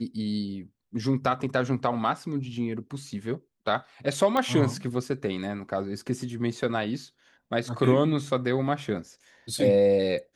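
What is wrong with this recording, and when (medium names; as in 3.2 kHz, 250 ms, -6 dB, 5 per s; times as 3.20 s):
4.37 s: pop -14 dBFS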